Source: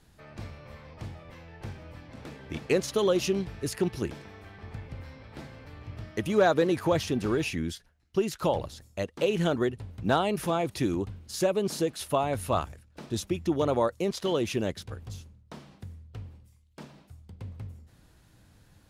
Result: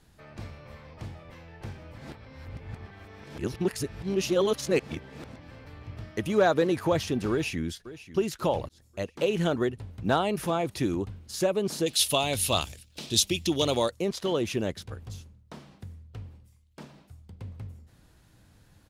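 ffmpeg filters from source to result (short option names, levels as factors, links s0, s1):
-filter_complex "[0:a]asplit=2[s0][s1];[s1]afade=t=in:st=7.31:d=0.01,afade=t=out:st=7.72:d=0.01,aecho=0:1:540|1080|1620|2160:0.16788|0.0671522|0.0268609|0.0107443[s2];[s0][s2]amix=inputs=2:normalize=0,asettb=1/sr,asplit=3[s3][s4][s5];[s3]atrim=end=11.864[s6];[s4]atrim=start=11.86:end=13.91,asetpts=PTS-STARTPTS,afade=t=in:d=0.004:c=qsin,afade=t=out:st=2.046:d=0.004:c=qsin,highshelf=f=2200:t=q:w=1.5:g=13[s7];[s5]atrim=start=13.906[s8];[s6][s7]acrossfade=d=0.004:c1=hsin:c2=qsin[s9];[s9][s8]acrossfade=d=0.004:c1=qsin:c2=hsin,asplit=4[s10][s11][s12][s13];[s10]atrim=end=1.982[s14];[s11]atrim=start=1.978:end=5.512,asetpts=PTS-STARTPTS,areverse[s15];[s12]atrim=start=5.508:end=8.69,asetpts=PTS-STARTPTS,afade=t=out:st=3.178:d=0.004:c=hsin[s16];[s13]atrim=start=8.69,asetpts=PTS-STARTPTS,afade=t=in:d=0.47:c=qsin[s17];[s14][s15]acrossfade=d=0.004:c1=hsin:c2=hsin[s18];[s16][s17]concat=n=2:v=0:a=1[s19];[s18][s19]acrossfade=d=0.004:c1=hsin:c2=hsin"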